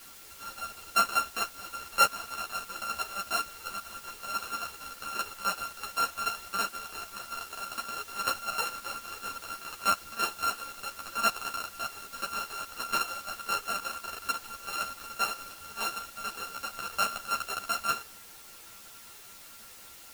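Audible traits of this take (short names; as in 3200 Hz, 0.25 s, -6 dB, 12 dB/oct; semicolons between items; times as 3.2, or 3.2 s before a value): a buzz of ramps at a fixed pitch in blocks of 32 samples; chopped level 5.2 Hz, depth 65%, duty 70%; a quantiser's noise floor 8-bit, dither triangular; a shimmering, thickened sound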